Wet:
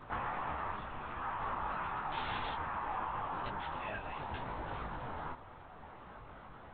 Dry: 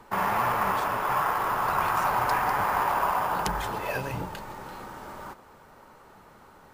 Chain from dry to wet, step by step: 3.6–4.29 HPF 560 Hz; compressor 6:1, threshold -37 dBFS, peak gain reduction 14.5 dB; 2.12–2.54 requantised 6-bit, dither triangular; LPC vocoder at 8 kHz whisper; 0.76–1.21 bell 1000 Hz -5.5 dB 2.2 oct; detuned doubles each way 22 cents; gain +4 dB

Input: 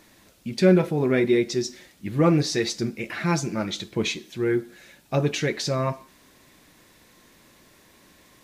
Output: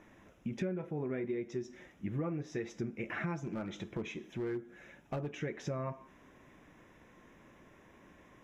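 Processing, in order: running mean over 10 samples; compressor 8:1, threshold -32 dBFS, peak gain reduction 20 dB; 3.41–5.31 hard clip -30 dBFS, distortion -21 dB; gain -2 dB

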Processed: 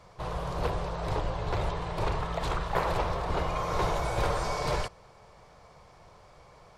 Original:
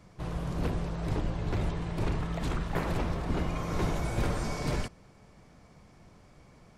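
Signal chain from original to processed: graphic EQ 250/500/1000/4000 Hz -12/+7/+8/+5 dB

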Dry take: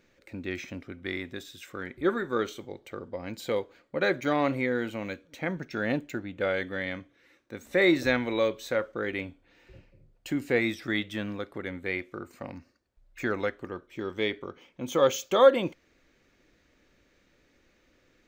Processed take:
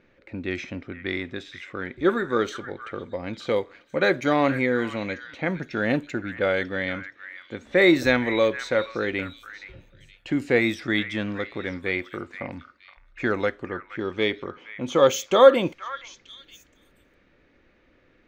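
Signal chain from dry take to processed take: low-pass opened by the level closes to 2700 Hz, open at -23 dBFS; delay with a stepping band-pass 0.471 s, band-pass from 1600 Hz, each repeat 1.4 oct, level -9.5 dB; gain +5 dB

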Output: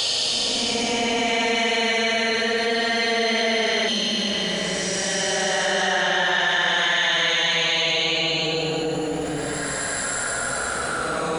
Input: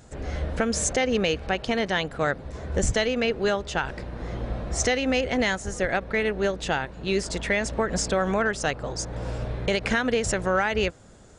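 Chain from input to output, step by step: RIAA curve recording; Paulstretch 21×, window 0.10 s, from 1.64; spectral repair 3.91–4.69, 330–2500 Hz after; fast leveller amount 70%

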